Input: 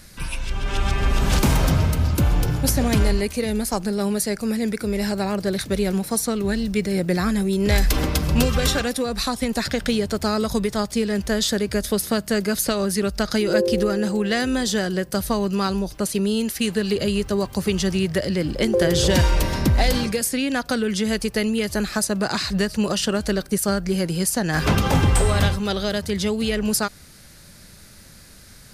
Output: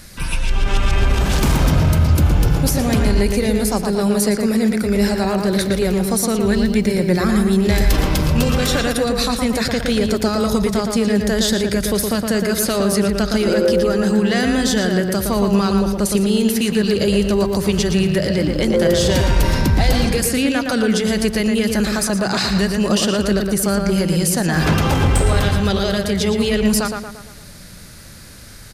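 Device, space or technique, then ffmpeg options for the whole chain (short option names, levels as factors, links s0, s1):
soft clipper into limiter: -filter_complex "[0:a]asoftclip=type=tanh:threshold=0.335,alimiter=limit=0.158:level=0:latency=1:release=24,asplit=2[s0][s1];[s1]adelay=115,lowpass=f=3100:p=1,volume=0.631,asplit=2[s2][s3];[s3]adelay=115,lowpass=f=3100:p=1,volume=0.5,asplit=2[s4][s5];[s5]adelay=115,lowpass=f=3100:p=1,volume=0.5,asplit=2[s6][s7];[s7]adelay=115,lowpass=f=3100:p=1,volume=0.5,asplit=2[s8][s9];[s9]adelay=115,lowpass=f=3100:p=1,volume=0.5,asplit=2[s10][s11];[s11]adelay=115,lowpass=f=3100:p=1,volume=0.5[s12];[s0][s2][s4][s6][s8][s10][s12]amix=inputs=7:normalize=0,volume=1.88"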